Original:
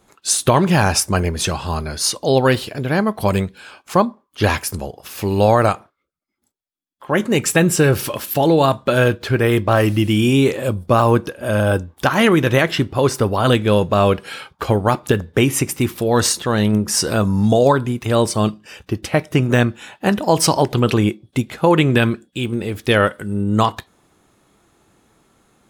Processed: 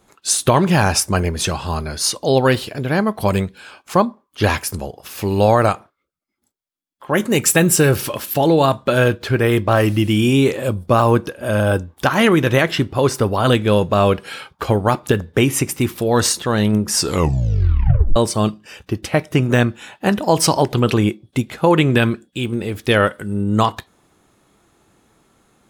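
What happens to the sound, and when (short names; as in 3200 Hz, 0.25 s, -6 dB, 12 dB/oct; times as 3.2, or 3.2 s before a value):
7.13–7.96 high shelf 8400 Hz +10.5 dB
16.95 tape stop 1.21 s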